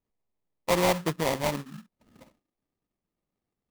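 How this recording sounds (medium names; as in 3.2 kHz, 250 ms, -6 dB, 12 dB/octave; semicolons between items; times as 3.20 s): aliases and images of a low sample rate 1.5 kHz, jitter 20%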